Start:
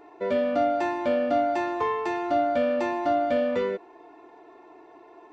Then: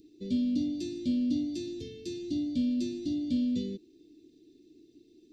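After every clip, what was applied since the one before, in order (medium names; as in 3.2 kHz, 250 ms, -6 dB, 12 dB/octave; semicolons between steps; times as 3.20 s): elliptic band-stop 270–4000 Hz, stop band 70 dB; trim +4 dB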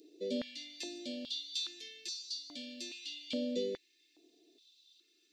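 step-sequenced high-pass 2.4 Hz 540–4800 Hz; trim +2.5 dB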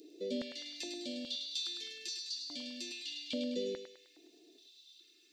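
in parallel at +2 dB: compression, threshold -50 dBFS, peak gain reduction 17 dB; on the sum: thinning echo 103 ms, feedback 53%, high-pass 610 Hz, level -5.5 dB; trim -3 dB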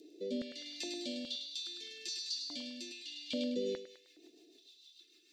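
rotary cabinet horn 0.75 Hz, later 6.7 Hz, at 3.16 s; trim +2 dB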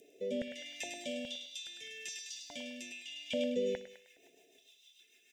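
static phaser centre 1.2 kHz, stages 6; feedback delay 61 ms, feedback 55%, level -20.5 dB; trim +7.5 dB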